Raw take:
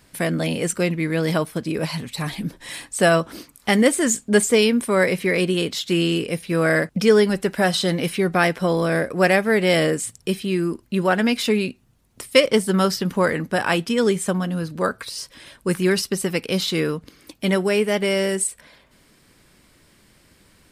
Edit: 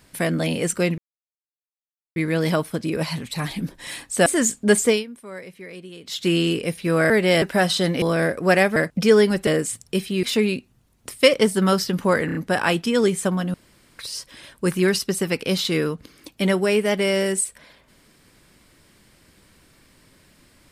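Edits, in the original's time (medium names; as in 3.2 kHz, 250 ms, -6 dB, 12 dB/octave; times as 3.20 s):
0.98 s: insert silence 1.18 s
3.08–3.91 s: delete
4.53–5.84 s: dip -18.5 dB, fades 0.16 s
6.75–7.46 s: swap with 9.49–9.81 s
8.06–8.75 s: delete
10.57–11.35 s: delete
13.38 s: stutter 0.03 s, 4 plays
14.57–15.02 s: room tone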